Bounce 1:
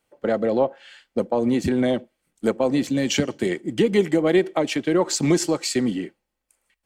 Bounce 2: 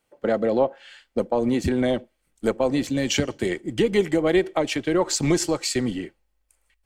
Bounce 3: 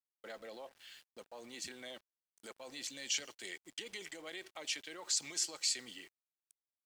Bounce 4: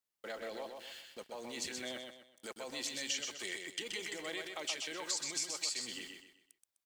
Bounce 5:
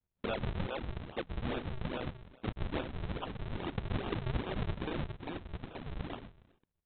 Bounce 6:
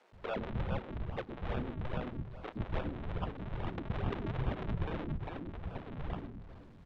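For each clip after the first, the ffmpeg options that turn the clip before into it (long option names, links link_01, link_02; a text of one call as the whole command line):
ffmpeg -i in.wav -af "asubboost=boost=6.5:cutoff=75" out.wav
ffmpeg -i in.wav -af "alimiter=limit=-18.5dB:level=0:latency=1:release=12,bandpass=frequency=5600:width_type=q:width=0.84:csg=0,aeval=exprs='val(0)*gte(abs(val(0)),0.00168)':channel_layout=same,volume=-3.5dB" out.wav
ffmpeg -i in.wav -filter_complex "[0:a]acompressor=threshold=-39dB:ratio=6,asplit=2[link_01][link_02];[link_02]aecho=0:1:127|254|381|508:0.562|0.197|0.0689|0.0241[link_03];[link_01][link_03]amix=inputs=2:normalize=0,volume=4.5dB" out.wav
ffmpeg -i in.wav -af "acompressor=threshold=-42dB:ratio=6,aresample=8000,acrusher=samples=18:mix=1:aa=0.000001:lfo=1:lforange=28.8:lforate=2.4,aresample=44100,volume=11dB" out.wav
ffmpeg -i in.wav -filter_complex "[0:a]aeval=exprs='val(0)+0.5*0.00501*sgn(val(0))':channel_layout=same,adynamicsmooth=sensitivity=1:basefreq=2200,acrossover=split=360[link_01][link_02];[link_01]adelay=120[link_03];[link_03][link_02]amix=inputs=2:normalize=0" out.wav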